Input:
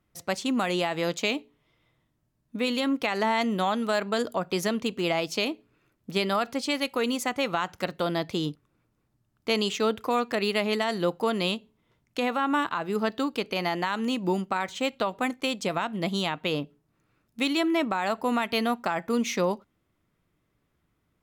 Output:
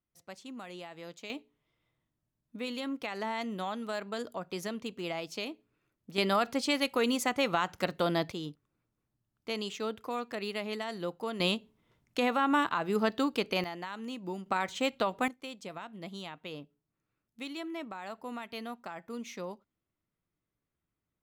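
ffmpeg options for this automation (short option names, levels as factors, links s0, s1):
-af "asetnsamples=n=441:p=0,asendcmd='1.3 volume volume -10dB;6.18 volume volume -1.5dB;8.32 volume volume -10dB;11.4 volume volume -1.5dB;13.64 volume volume -12dB;14.46 volume volume -2.5dB;15.28 volume volume -14.5dB',volume=0.126"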